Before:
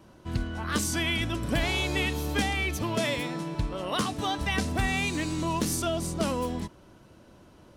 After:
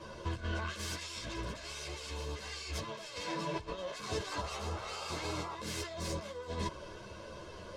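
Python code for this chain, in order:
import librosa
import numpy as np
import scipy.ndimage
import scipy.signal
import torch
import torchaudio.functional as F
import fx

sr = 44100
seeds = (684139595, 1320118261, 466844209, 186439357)

y = fx.self_delay(x, sr, depth_ms=0.4)
y = scipy.signal.sosfilt(scipy.signal.butter(2, 5100.0, 'lowpass', fs=sr, output='sos'), y)
y = fx.bass_treble(y, sr, bass_db=-6, treble_db=7)
y = y + 0.66 * np.pad(y, (int(1.9 * sr / 1000.0), 0))[:len(y)]
y = fx.over_compress(y, sr, threshold_db=-40.0, ratio=-1.0)
y = fx.spec_paint(y, sr, seeds[0], shape='noise', start_s=4.31, length_s=1.24, low_hz=360.0, high_hz=1400.0, level_db=-44.0)
y = fx.ensemble(y, sr)
y = y * 10.0 ** (2.0 / 20.0)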